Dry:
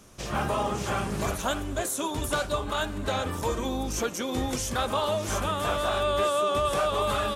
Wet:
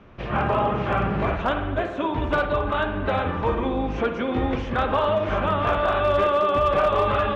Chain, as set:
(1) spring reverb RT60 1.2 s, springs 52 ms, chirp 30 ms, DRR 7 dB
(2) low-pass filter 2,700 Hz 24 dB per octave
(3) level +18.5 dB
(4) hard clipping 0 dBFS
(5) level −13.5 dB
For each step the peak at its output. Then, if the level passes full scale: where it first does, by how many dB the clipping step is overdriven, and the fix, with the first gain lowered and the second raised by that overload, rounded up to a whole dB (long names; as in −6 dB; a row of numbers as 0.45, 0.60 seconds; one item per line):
−14.0, −14.5, +4.0, 0.0, −13.5 dBFS
step 3, 4.0 dB
step 3 +14.5 dB, step 5 −9.5 dB